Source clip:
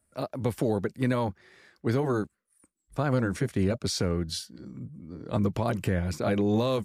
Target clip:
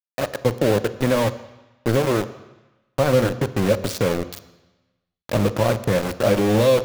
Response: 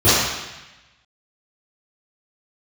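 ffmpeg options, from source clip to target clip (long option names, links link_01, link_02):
-filter_complex "[0:a]equalizer=frequency=540:width_type=o:width=0.28:gain=12,aeval=exprs='val(0)*gte(abs(val(0)),0.0531)':channel_layout=same,asplit=2[link_01][link_02];[1:a]atrim=start_sample=2205[link_03];[link_02][link_03]afir=irnorm=-1:irlink=0,volume=-38.5dB[link_04];[link_01][link_04]amix=inputs=2:normalize=0,volume=4.5dB"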